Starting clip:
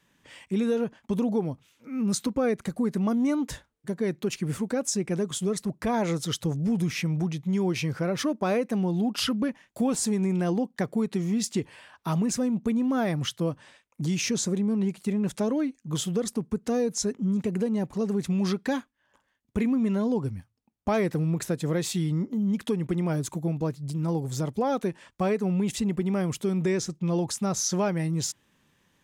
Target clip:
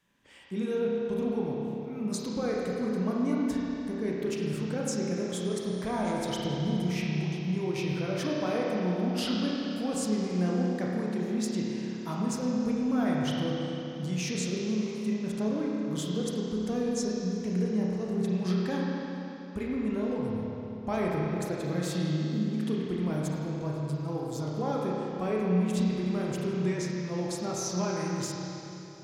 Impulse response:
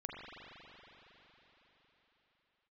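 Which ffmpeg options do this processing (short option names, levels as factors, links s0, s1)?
-filter_complex "[0:a]asettb=1/sr,asplit=3[s0][s1][s2];[s0]atrim=end=5.454[s3];[s1]atrim=start=5.45:end=6.35,asetpts=PTS-STARTPTS,afade=t=in:d=0.004:c=qsin,afade=t=out:st=0.896:d=0.004:c=qsin,aeval=exprs='val(0)+0.00355*sin(2*PI*9200*n/s)':c=same[s4];[s2]atrim=start=6.346[s5];[s3][s4]acrossfade=d=0.004:c1=hsin:c2=qsin[s6];[s6][s5]acrossfade=d=0.004:c1=qsin:c2=hsin[s7];[1:a]atrim=start_sample=2205,asetrate=61740,aresample=44100[s8];[s7][s8]afir=irnorm=-1:irlink=0"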